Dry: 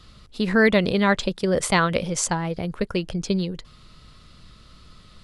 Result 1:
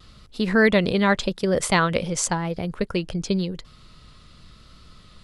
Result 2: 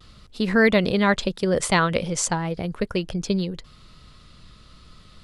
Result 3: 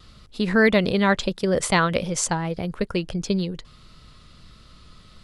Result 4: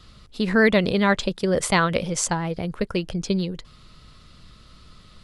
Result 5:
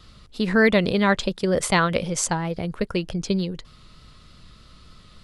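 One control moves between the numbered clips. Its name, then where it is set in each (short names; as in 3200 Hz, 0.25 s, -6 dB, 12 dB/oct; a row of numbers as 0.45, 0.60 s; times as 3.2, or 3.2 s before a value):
vibrato, rate: 0.9, 0.39, 1.6, 15, 3.3 Hz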